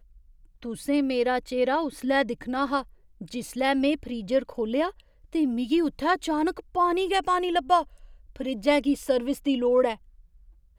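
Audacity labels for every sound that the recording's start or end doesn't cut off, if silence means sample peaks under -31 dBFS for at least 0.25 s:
0.650000	2.810000	sound
3.210000	4.890000	sound
5.350000	7.830000	sound
8.360000	9.940000	sound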